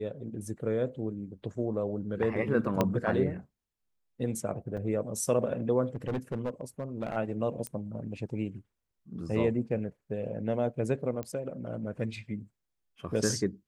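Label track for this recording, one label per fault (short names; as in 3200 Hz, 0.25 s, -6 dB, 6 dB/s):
2.810000	2.810000	pop -12 dBFS
4.770000	4.780000	gap 5 ms
5.850000	7.170000	clipped -27.5 dBFS
7.670000	7.670000	pop -21 dBFS
11.230000	11.230000	pop -23 dBFS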